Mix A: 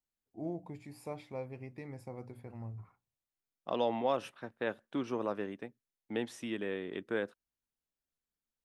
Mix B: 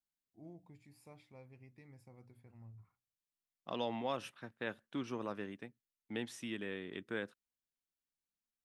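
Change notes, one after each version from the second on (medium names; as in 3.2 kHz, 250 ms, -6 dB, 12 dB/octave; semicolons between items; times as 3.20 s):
first voice -9.5 dB; master: add peaking EQ 560 Hz -8 dB 2.3 oct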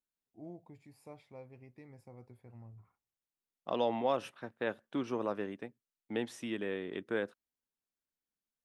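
first voice: remove hum notches 60/120/180/240/300 Hz; master: add peaking EQ 560 Hz +8 dB 2.3 oct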